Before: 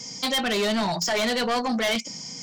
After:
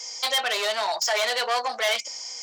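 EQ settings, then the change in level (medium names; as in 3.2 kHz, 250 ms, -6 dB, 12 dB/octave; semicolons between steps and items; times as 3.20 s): high-pass 540 Hz 24 dB/octave; +1.5 dB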